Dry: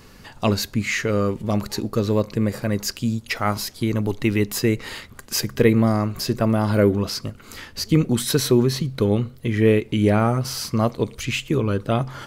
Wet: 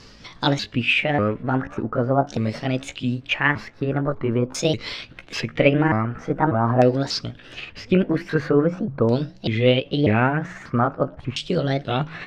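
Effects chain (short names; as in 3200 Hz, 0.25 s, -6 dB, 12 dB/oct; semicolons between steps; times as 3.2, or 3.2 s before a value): repeated pitch sweeps +6.5 st, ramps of 0.592 s; LFO low-pass saw down 0.44 Hz 1000–5300 Hz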